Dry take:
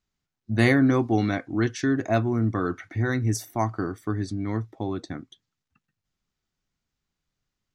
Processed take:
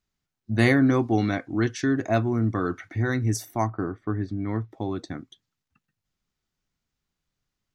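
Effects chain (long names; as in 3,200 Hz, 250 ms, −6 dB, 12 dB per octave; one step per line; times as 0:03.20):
0:03.66–0:04.70: low-pass filter 1,400 Hz → 3,100 Hz 12 dB per octave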